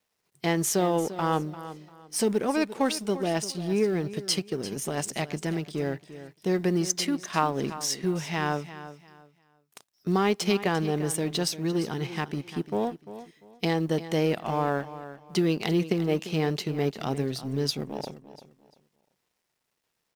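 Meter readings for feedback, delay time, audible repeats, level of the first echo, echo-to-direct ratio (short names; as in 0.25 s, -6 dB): 26%, 0.346 s, 2, -14.0 dB, -13.5 dB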